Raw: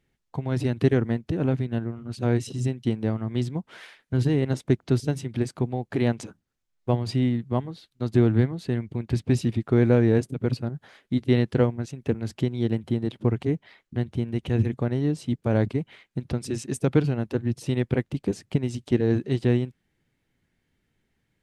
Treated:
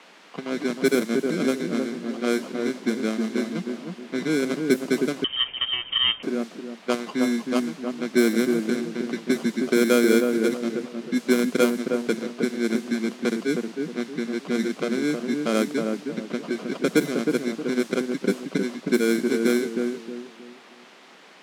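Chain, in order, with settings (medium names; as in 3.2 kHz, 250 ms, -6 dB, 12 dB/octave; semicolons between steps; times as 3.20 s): sample-rate reducer 1.9 kHz, jitter 0%; comb of notches 860 Hz; added noise white -44 dBFS; elliptic high-pass 180 Hz, stop band 40 dB; on a send: filtered feedback delay 314 ms, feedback 36%, low-pass 970 Hz, level -3.5 dB; 5.24–6.23 s: on the sum: frequency inversion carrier 3.4 kHz; level-controlled noise filter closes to 2.6 kHz, open at -17.5 dBFS; trim +2.5 dB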